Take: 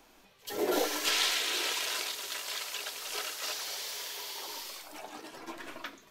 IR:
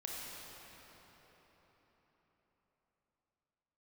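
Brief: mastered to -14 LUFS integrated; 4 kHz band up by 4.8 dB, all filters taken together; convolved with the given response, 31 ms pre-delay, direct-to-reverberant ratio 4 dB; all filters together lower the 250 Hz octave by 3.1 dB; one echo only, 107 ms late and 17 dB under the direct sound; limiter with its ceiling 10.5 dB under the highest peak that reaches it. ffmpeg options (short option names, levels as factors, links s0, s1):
-filter_complex "[0:a]equalizer=f=250:t=o:g=-5,equalizer=f=4000:t=o:g=6,alimiter=limit=0.0891:level=0:latency=1,aecho=1:1:107:0.141,asplit=2[s0][s1];[1:a]atrim=start_sample=2205,adelay=31[s2];[s1][s2]afir=irnorm=-1:irlink=0,volume=0.596[s3];[s0][s3]amix=inputs=2:normalize=0,volume=6.31"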